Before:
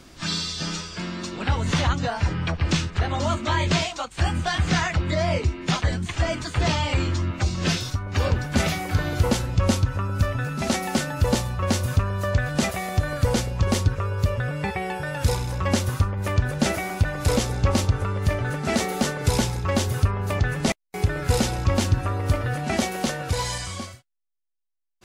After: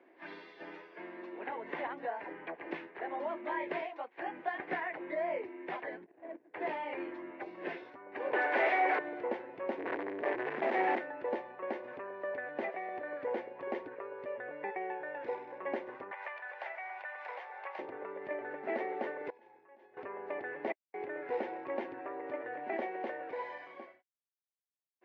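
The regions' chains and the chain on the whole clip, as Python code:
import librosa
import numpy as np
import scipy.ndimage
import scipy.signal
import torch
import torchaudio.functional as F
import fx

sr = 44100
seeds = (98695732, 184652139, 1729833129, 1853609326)

y = fx.chain(x, sr, fx.lowpass(hz=8200.0, slope=12),
    fx.transient(attack_db=7, sustain_db=-4), at=(4.47, 4.88))
y = fx.chain(y, sr, fx.median_filter(points=41),
    fx.level_steps(step_db=16), at=(6.04, 6.54))
y = fx.chain(y, sr, fx.highpass(hz=530.0, slope=12),
    fx.leveller(passes=5),
    fx.band_squash(depth_pct=40), at=(8.33, 8.99))
y = fx.chain(y, sr, fx.clip_1bit(),
    fx.highpass(hz=71.0, slope=24),
    fx.leveller(passes=3), at=(9.78, 10.99))
y = fx.chain(y, sr, fx.highpass(hz=780.0, slope=24),
    fx.band_squash(depth_pct=100), at=(16.11, 17.79))
y = fx.chain(y, sr, fx.over_compress(threshold_db=-26.0, ratio=-1.0),
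    fx.comb_fb(f0_hz=840.0, decay_s=0.36, harmonics='all', damping=0.0, mix_pct=90), at=(19.3, 19.97))
y = scipy.signal.sosfilt(scipy.signal.ellip(3, 1.0, 70, [340.0, 2000.0], 'bandpass', fs=sr, output='sos'), y)
y = fx.peak_eq(y, sr, hz=1300.0, db=-13.5, octaves=0.4)
y = y * 10.0 ** (-7.5 / 20.0)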